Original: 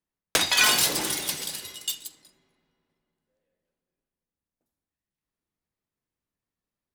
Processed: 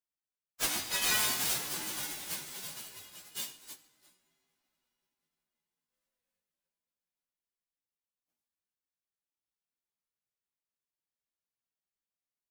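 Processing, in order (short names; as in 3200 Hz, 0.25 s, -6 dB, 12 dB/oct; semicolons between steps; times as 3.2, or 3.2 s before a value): spectral whitening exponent 0.3; plain phase-vocoder stretch 1.8×; gain -7 dB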